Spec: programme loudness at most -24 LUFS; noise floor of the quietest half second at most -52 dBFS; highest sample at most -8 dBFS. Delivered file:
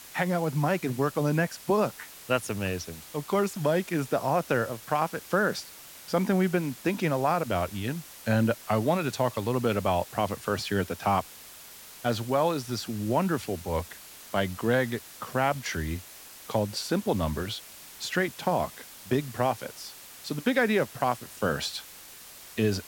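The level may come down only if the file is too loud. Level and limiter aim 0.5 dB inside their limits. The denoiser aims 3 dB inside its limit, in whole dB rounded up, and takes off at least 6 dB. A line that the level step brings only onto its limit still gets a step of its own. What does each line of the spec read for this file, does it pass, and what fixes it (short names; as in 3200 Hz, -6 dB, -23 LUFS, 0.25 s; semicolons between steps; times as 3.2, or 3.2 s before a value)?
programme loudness -28.5 LUFS: OK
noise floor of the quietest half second -47 dBFS: fail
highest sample -10.5 dBFS: OK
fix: denoiser 8 dB, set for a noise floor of -47 dBFS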